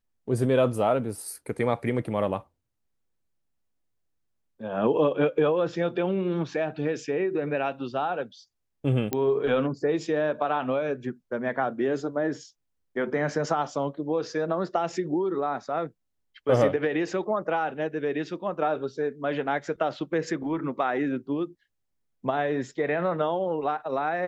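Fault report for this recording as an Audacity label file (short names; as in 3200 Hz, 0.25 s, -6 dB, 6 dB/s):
9.130000	9.130000	pop -12 dBFS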